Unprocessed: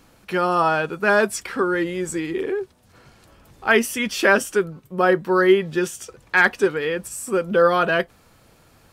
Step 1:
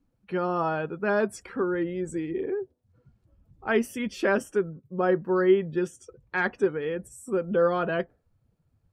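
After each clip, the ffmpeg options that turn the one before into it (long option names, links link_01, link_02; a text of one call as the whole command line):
ffmpeg -i in.wav -af "afftdn=noise_reduction=19:noise_floor=-41,tiltshelf=frequency=880:gain=5.5,volume=-8.5dB" out.wav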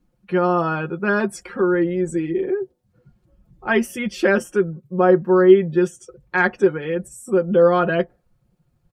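ffmpeg -i in.wav -af "aecho=1:1:5.6:0.67,volume=5dB" out.wav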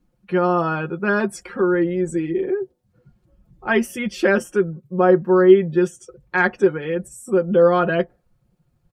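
ffmpeg -i in.wav -af anull out.wav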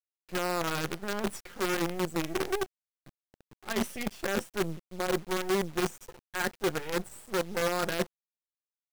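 ffmpeg -i in.wav -af "areverse,acompressor=threshold=-26dB:ratio=8,areverse,acrusher=bits=5:dc=4:mix=0:aa=0.000001,volume=-2dB" out.wav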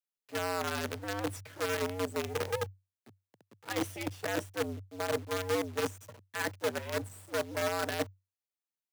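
ffmpeg -i in.wav -af "afreqshift=95,volume=-3dB" out.wav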